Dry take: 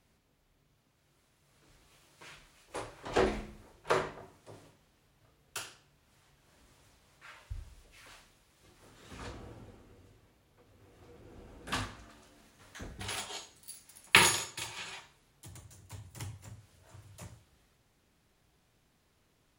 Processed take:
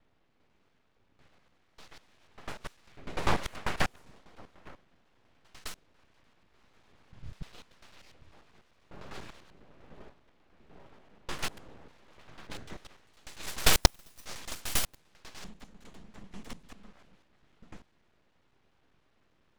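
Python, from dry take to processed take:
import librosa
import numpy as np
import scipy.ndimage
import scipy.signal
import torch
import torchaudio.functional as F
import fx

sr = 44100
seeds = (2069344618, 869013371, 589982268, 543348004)

y = fx.block_reorder(x, sr, ms=99.0, group=6)
y = fx.env_lowpass(y, sr, base_hz=2800.0, full_db=-32.0)
y = np.abs(y)
y = y * librosa.db_to_amplitude(3.5)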